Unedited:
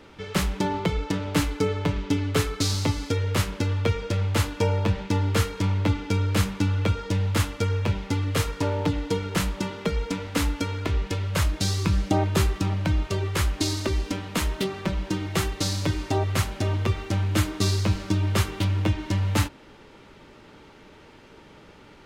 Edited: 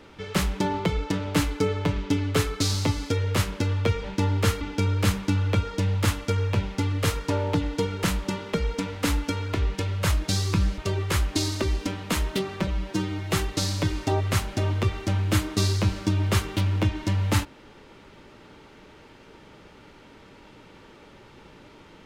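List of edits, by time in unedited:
0:04.04–0:04.96: remove
0:05.53–0:05.93: remove
0:12.10–0:13.03: remove
0:14.92–0:15.35: time-stretch 1.5×

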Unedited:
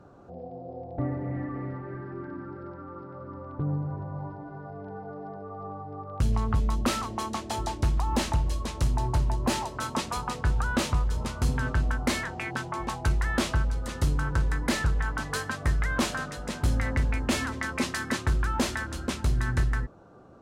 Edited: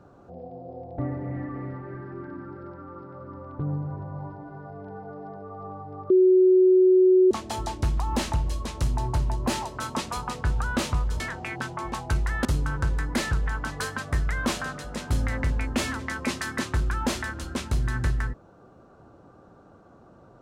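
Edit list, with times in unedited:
0:06.10–0:07.31: beep over 371 Hz −13.5 dBFS
0:11.20–0:12.15: remove
0:13.40–0:13.98: remove

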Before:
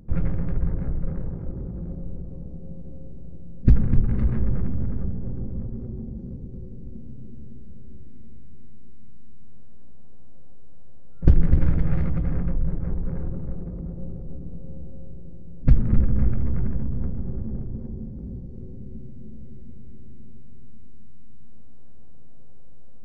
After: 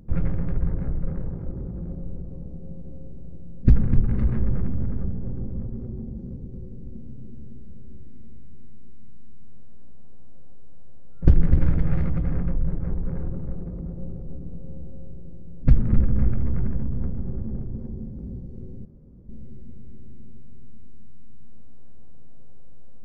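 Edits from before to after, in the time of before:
0:18.85–0:19.29: fill with room tone

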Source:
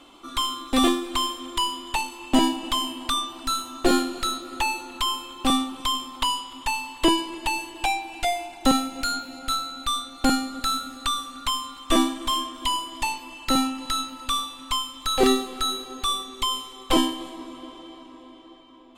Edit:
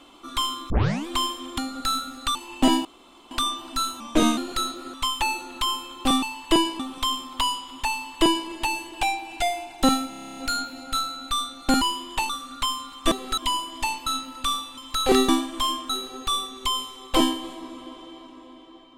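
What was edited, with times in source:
0:00.70: tape start 0.37 s
0:01.58–0:02.06: swap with 0:10.37–0:11.14
0:02.56–0:03.02: fill with room tone
0:03.71–0:04.04: play speed 88%
0:06.75–0:07.32: duplicate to 0:05.62
0:08.92: stutter 0.03 s, 10 plays
0:11.96–0:12.57: swap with 0:15.40–0:15.66
0:13.26–0:13.91: remove
0:14.62–0:14.89: move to 0:04.60

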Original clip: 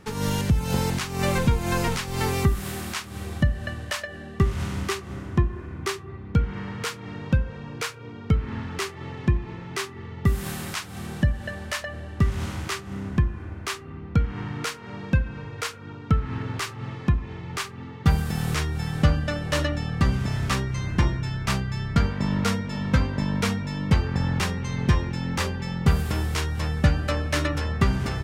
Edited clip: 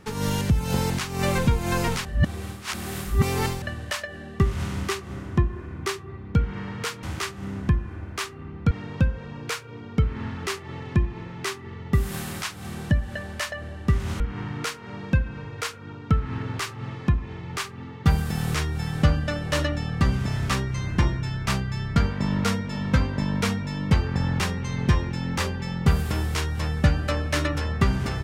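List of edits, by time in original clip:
0:02.05–0:03.62: reverse
0:12.52–0:14.20: move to 0:07.03

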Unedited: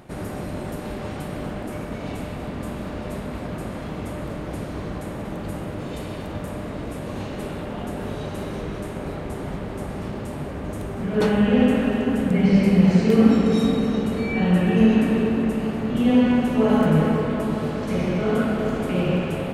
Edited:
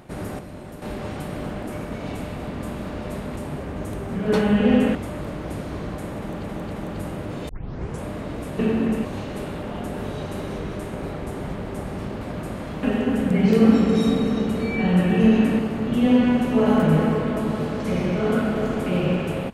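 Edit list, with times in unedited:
0:00.39–0:00.82: clip gain −7.5 dB
0:03.36–0:03.98: swap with 0:10.24–0:11.83
0:05.20–0:05.47: repeat, 3 plays
0:05.98: tape start 0.55 s
0:12.48–0:13.05: remove
0:15.16–0:15.62: move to 0:07.08

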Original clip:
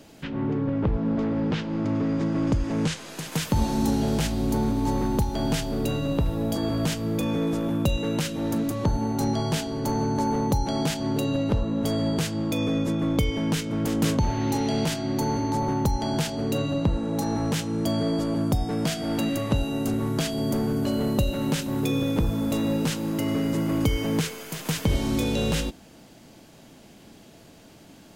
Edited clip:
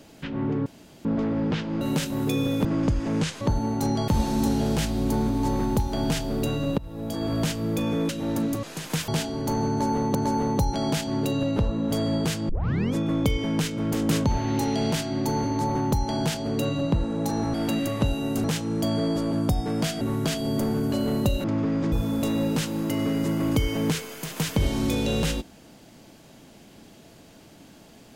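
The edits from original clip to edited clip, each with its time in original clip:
0:00.66–0:01.05: fill with room tone
0:01.81–0:02.29: swap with 0:21.37–0:22.21
0:03.05–0:03.50: swap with 0:08.79–0:09.46
0:06.20–0:06.77: fade in, from −19.5 dB
0:07.51–0:08.25: remove
0:10.08–0:10.53: repeat, 2 plays
0:12.42: tape start 0.45 s
0:19.04–0:19.94: move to 0:17.47

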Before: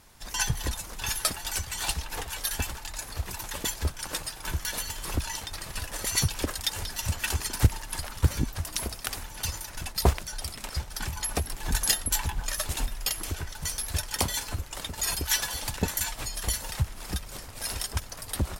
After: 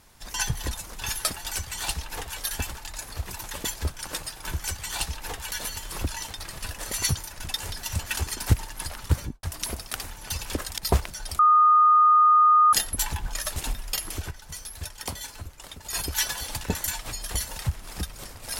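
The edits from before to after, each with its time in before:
0:01.52–0:02.39: duplicate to 0:04.64
0:06.30–0:06.67: swap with 0:09.54–0:09.91
0:08.26–0:08.56: fade out and dull
0:10.52–0:11.86: beep over 1,230 Hz −13.5 dBFS
0:13.44–0:15.06: clip gain −6.5 dB

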